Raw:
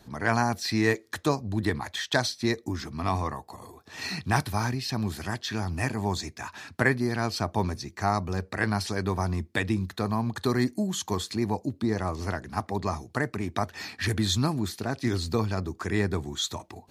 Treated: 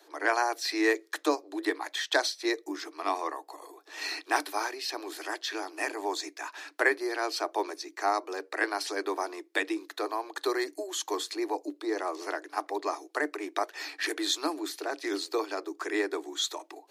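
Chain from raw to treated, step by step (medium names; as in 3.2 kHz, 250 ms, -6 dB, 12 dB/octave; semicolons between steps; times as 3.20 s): Chebyshev high-pass 290 Hz, order 10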